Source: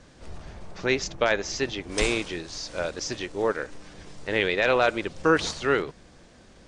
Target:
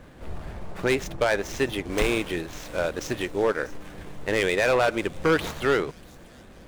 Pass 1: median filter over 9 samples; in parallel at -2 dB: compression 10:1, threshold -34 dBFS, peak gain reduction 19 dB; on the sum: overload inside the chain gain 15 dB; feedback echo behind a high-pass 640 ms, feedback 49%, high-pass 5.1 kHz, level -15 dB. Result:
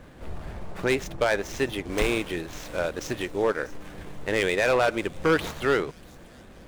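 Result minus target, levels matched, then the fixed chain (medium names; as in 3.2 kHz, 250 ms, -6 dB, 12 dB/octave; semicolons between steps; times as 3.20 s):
compression: peak gain reduction +6 dB
median filter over 9 samples; in parallel at -2 dB: compression 10:1, threshold -27.5 dBFS, peak gain reduction 13 dB; on the sum: overload inside the chain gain 15 dB; feedback echo behind a high-pass 640 ms, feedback 49%, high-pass 5.1 kHz, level -15 dB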